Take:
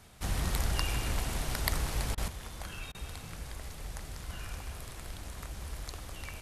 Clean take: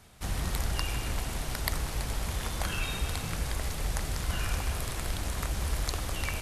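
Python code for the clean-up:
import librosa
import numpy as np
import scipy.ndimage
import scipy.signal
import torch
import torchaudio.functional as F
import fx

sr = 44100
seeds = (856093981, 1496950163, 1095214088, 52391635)

y = fx.fix_interpolate(x, sr, at_s=(2.15, 2.92), length_ms=25.0)
y = fx.gain(y, sr, db=fx.steps((0.0, 0.0), (2.28, 10.0)))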